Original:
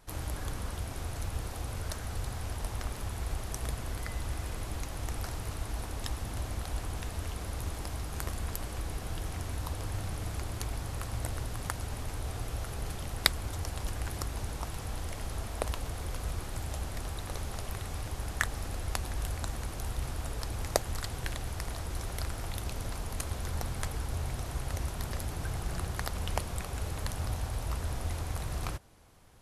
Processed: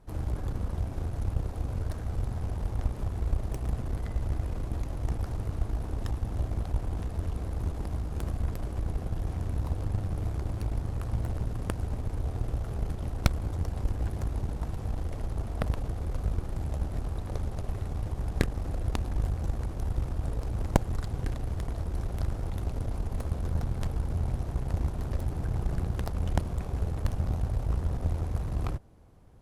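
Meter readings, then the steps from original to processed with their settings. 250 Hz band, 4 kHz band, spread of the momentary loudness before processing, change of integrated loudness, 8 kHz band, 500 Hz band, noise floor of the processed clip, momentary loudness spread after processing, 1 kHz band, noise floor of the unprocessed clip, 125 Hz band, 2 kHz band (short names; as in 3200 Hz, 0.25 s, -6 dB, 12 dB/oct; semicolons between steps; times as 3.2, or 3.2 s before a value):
+6.0 dB, -9.5 dB, 3 LU, +3.5 dB, -10.5 dB, +2.0 dB, -37 dBFS, 4 LU, -1.5 dB, -40 dBFS, +6.0 dB, -6.5 dB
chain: added harmonics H 8 -11 dB, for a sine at -2 dBFS; tilt shelf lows +8.5 dB; Doppler distortion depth 0.42 ms; gain -3 dB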